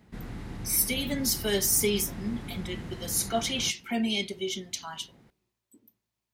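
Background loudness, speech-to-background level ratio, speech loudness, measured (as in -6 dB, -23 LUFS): -40.5 LUFS, 12.5 dB, -28.0 LUFS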